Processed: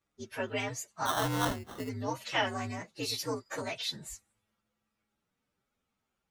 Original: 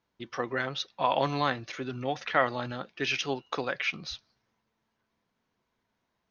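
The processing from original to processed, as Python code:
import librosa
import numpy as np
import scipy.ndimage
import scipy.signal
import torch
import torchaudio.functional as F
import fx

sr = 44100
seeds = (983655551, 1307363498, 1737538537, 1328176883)

y = fx.partial_stretch(x, sr, pct=122)
y = fx.sample_hold(y, sr, seeds[0], rate_hz=2400.0, jitter_pct=0, at=(1.05, 1.88), fade=0.02)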